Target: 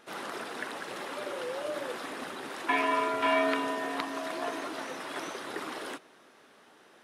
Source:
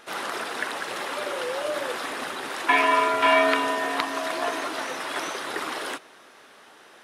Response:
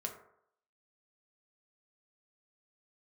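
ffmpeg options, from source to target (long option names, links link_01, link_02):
-af "equalizer=frequency=200:width_type=o:width=2.6:gain=7,volume=-9dB"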